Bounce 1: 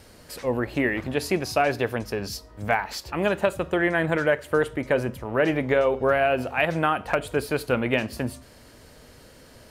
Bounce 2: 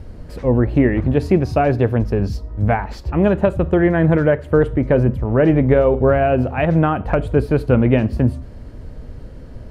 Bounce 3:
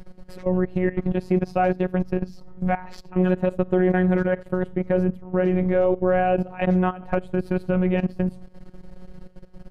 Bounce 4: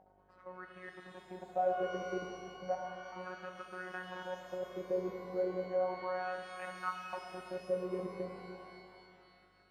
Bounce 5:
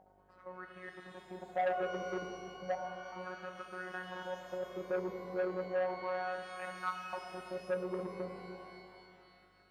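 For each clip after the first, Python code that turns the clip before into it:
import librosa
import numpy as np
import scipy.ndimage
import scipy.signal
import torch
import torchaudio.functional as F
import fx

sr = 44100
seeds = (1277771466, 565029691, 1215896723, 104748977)

y1 = fx.tilt_eq(x, sr, slope=-4.5)
y1 = F.gain(torch.from_numpy(y1), 2.5).numpy()
y2 = fx.level_steps(y1, sr, step_db=17)
y2 = fx.robotise(y2, sr, hz=183.0)
y3 = fx.dmg_buzz(y2, sr, base_hz=50.0, harmonics=15, level_db=-38.0, tilt_db=-7, odd_only=False)
y3 = fx.wah_lfo(y3, sr, hz=0.34, low_hz=430.0, high_hz=1400.0, q=4.8)
y3 = fx.rev_shimmer(y3, sr, seeds[0], rt60_s=2.3, semitones=12, shimmer_db=-8, drr_db=3.0)
y3 = F.gain(torch.from_numpy(y3), -6.0).numpy()
y4 = fx.transformer_sat(y3, sr, knee_hz=1000.0)
y4 = F.gain(torch.from_numpy(y4), 1.0).numpy()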